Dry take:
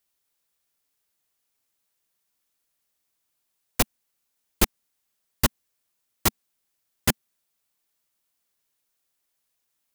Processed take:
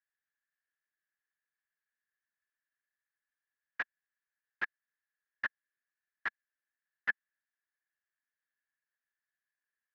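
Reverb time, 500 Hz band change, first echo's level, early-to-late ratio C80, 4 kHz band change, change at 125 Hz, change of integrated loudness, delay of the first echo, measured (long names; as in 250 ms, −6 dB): no reverb audible, −25.0 dB, no echo audible, no reverb audible, −24.5 dB, below −35 dB, −13.0 dB, no echo audible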